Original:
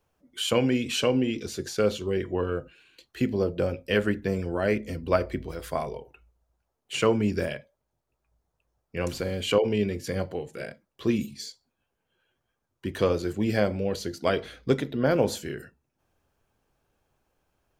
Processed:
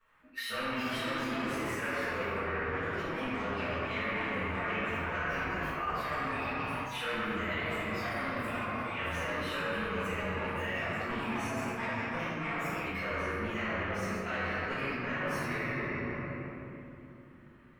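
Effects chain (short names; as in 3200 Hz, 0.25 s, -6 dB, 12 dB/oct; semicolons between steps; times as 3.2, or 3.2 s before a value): inharmonic rescaling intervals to 110%; in parallel at -2 dB: level quantiser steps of 22 dB; on the sum: soft clip -25 dBFS, distortion -8 dB; echoes that change speed 0.464 s, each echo +4 st, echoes 3, each echo -6 dB; band shelf 1700 Hz +15.5 dB; shoebox room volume 140 m³, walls hard, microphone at 1.6 m; reverse; compressor 6:1, threshold -24 dBFS, peak gain reduction 14 dB; reverse; gain -8 dB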